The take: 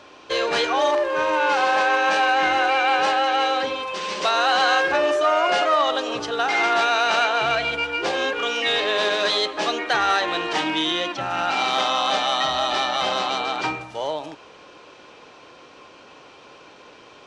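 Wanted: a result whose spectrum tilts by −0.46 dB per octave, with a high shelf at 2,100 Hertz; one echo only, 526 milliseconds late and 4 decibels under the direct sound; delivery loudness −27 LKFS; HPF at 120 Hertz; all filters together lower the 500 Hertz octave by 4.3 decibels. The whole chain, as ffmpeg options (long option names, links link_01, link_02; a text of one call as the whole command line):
ffmpeg -i in.wav -af "highpass=120,equalizer=frequency=500:width_type=o:gain=-6,highshelf=frequency=2100:gain=6,aecho=1:1:526:0.631,volume=-9dB" out.wav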